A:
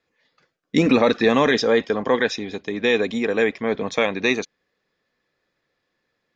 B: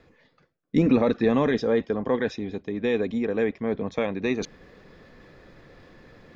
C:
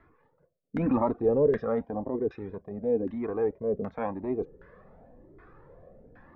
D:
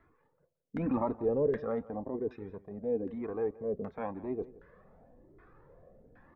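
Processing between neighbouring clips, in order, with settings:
tilt -3 dB/oct; reverse; upward compressor, threshold -18 dBFS; reverse; gain -8 dB
transient shaper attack -6 dB, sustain -1 dB; LFO low-pass saw down 1.3 Hz 380–1600 Hz; cascading flanger rising 0.94 Hz
echo 0.171 s -19.5 dB; gain -5.5 dB

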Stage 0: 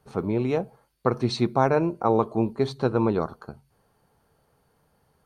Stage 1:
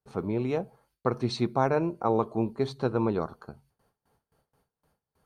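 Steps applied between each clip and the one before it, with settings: gate with hold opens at -55 dBFS; gain -4 dB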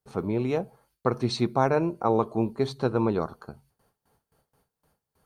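high shelf 6600 Hz +5 dB; gain +2 dB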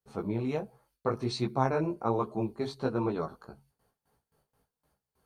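chorus voices 2, 1.3 Hz, delay 17 ms, depth 3 ms; gain -2 dB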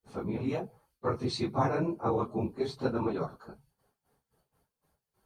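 phase scrambler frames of 50 ms

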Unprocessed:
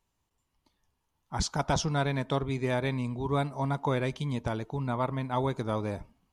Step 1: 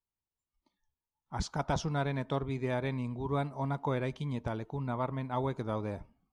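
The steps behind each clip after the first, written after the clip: spectral noise reduction 15 dB; high shelf 3900 Hz -8.5 dB; gain -3.5 dB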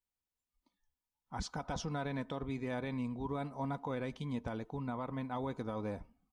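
comb 4 ms, depth 36%; limiter -26.5 dBFS, peak gain reduction 7.5 dB; gain -2.5 dB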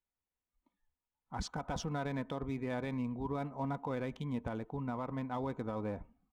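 Wiener smoothing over 9 samples; gain +1 dB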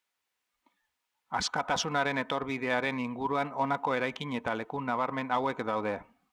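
HPF 370 Hz 6 dB/oct; bell 2300 Hz +9 dB 3 oct; gain +7 dB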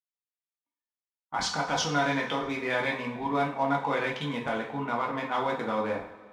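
gate -48 dBFS, range -29 dB; two-slope reverb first 0.42 s, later 2 s, from -17 dB, DRR -2 dB; gain -2 dB

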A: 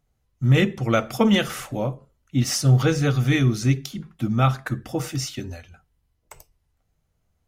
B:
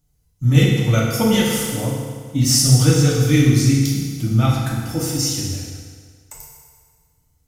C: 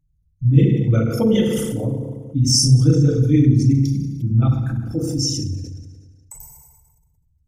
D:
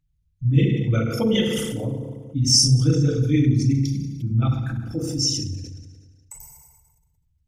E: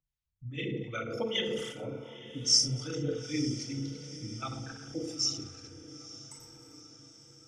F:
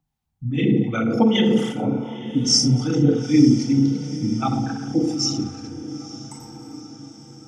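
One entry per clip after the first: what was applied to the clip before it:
tone controls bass +9 dB, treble +14 dB; FDN reverb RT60 1.8 s, low-frequency decay 0.85×, high-frequency decay 0.85×, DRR -4.5 dB; gain -6 dB
formant sharpening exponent 2
bell 2900 Hz +9.5 dB 2.2 oct; gain -4.5 dB
three-band isolator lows -14 dB, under 340 Hz, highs -20 dB, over 7400 Hz; harmonic tremolo 2.6 Hz, depth 70%, crossover 780 Hz; diffused feedback echo 0.914 s, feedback 58%, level -15 dB; gain -3.5 dB
small resonant body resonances 220/780 Hz, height 18 dB, ringing for 25 ms; gain +6 dB

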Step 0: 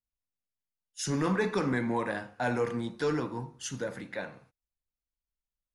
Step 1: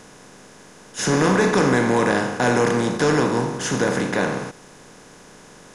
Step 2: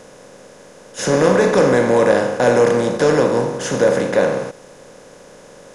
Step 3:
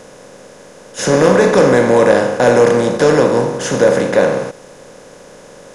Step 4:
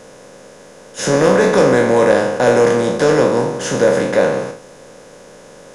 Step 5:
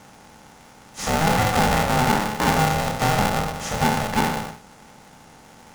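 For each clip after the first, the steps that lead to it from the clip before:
per-bin compression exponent 0.4; gain +6.5 dB
bell 540 Hz +13.5 dB 0.41 oct
hard clip -4.5 dBFS, distortion -33 dB; gain +3.5 dB
spectral trails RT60 0.44 s; gain -3 dB
polarity switched at an audio rate 320 Hz; gain -7.5 dB

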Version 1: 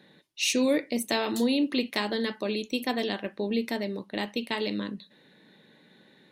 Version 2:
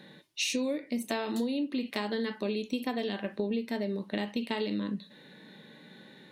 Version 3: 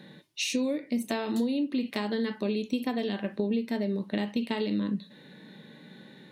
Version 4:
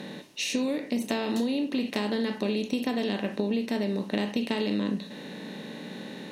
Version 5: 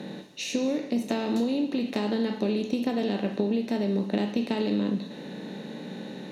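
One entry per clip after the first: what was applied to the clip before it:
harmonic-percussive split percussive -10 dB; compressor 12:1, threshold -36 dBFS, peak gain reduction 16.5 dB; gain +8 dB
bell 140 Hz +5 dB 2.4 oct
per-bin compression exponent 0.6; gain -1.5 dB
reverb RT60 1.1 s, pre-delay 3 ms, DRR 10 dB

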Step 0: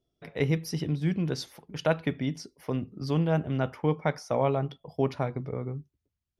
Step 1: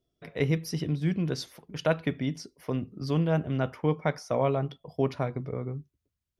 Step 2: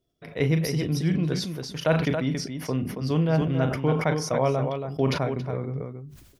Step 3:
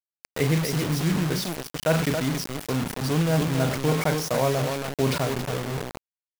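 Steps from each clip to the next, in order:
notch 840 Hz, Q 12
loudspeakers at several distances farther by 13 m -12 dB, 95 m -7 dB; sustainer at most 63 dB/s; gain +2 dB
bit-crush 5-bit

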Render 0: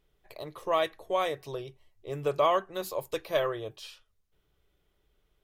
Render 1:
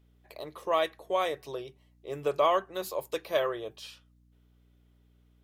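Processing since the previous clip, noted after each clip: HPF 190 Hz; hum 60 Hz, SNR 30 dB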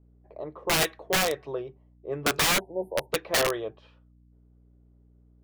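low-pass opened by the level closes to 580 Hz, open at -23 dBFS; spectral delete 2.6–3.1, 970–8700 Hz; wrapped overs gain 22.5 dB; gain +5 dB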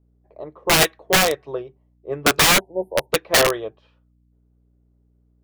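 upward expander 1.5:1, over -44 dBFS; gain +9 dB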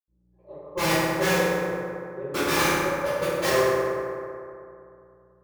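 reverb RT60 2.6 s, pre-delay 77 ms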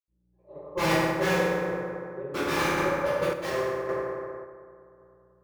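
high shelf 4900 Hz -9 dB; random-step tremolo 1.8 Hz

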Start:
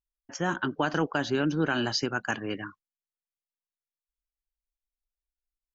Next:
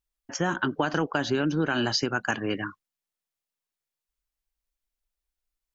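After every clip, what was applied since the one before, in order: compressor 3:1, threshold -28 dBFS, peak gain reduction 6 dB; gain +5.5 dB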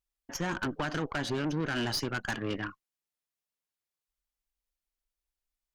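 tube stage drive 27 dB, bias 0.65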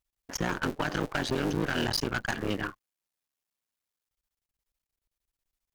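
cycle switcher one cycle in 3, muted; gain +4 dB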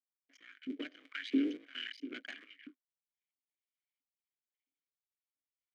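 step gate "....x.xxx.x.xx" 86 bpm -12 dB; LFO high-pass saw up 1.5 Hz 260–2400 Hz; vowel filter i; gain +3 dB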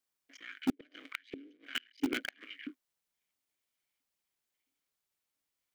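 flipped gate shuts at -31 dBFS, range -30 dB; in parallel at -9 dB: requantised 6-bit, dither none; on the sum: gain +9 dB

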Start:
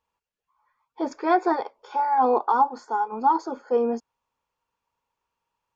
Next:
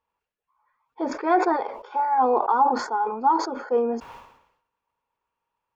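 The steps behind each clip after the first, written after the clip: tone controls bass -3 dB, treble -13 dB; sustainer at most 74 dB/s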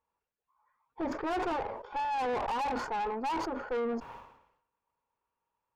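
tube stage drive 29 dB, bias 0.55; high shelf 2600 Hz -9 dB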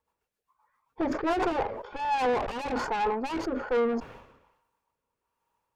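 rotary speaker horn 7.5 Hz, later 1.2 Hz, at 1.27; gain +7.5 dB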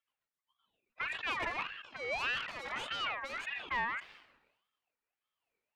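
ring modulator with a swept carrier 1800 Hz, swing 25%, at 1.7 Hz; gain -6.5 dB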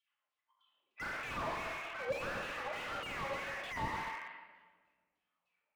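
LFO band-pass saw down 3.3 Hz 510–3700 Hz; shoebox room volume 1300 m³, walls mixed, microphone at 2.4 m; slew limiter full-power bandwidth 8.3 Hz; gain +6 dB

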